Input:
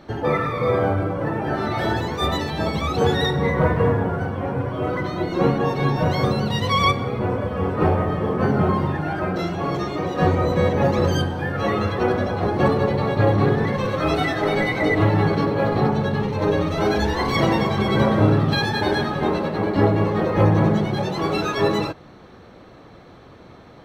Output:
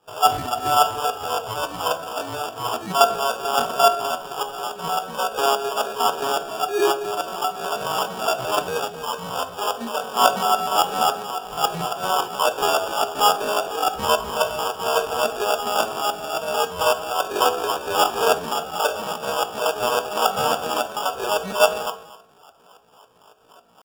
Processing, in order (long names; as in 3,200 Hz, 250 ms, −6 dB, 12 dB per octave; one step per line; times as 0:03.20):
in parallel at −3 dB: dead-zone distortion −35 dBFS
on the sum: Chebyshev band-stop filter 1,300–5,600 Hz, order 4
auto-filter band-pass saw down 3.6 Hz 500–2,900 Hz
parametric band 360 Hz +14 dB 2.4 octaves
mains-hum notches 60/120/180/240/300/360 Hz
on a send: feedback echo with a high-pass in the loop 247 ms, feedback 24%, high-pass 640 Hz, level −14 dB
on the sum: decimation without filtering 32×
feedback delay network reverb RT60 0.49 s, low-frequency decay 1.1×, high-frequency decay 0.7×, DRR 7.5 dB
pitch shifter +7 semitones
low-shelf EQ 120 Hz −6 dB
level −6.5 dB